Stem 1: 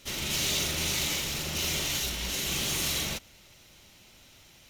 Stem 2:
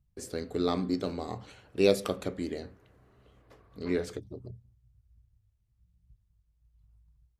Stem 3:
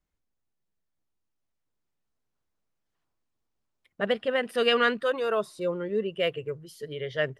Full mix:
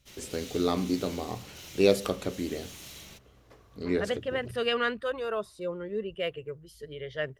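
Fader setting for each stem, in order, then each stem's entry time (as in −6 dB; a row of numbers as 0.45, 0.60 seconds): −16.5, +1.5, −5.0 decibels; 0.00, 0.00, 0.00 seconds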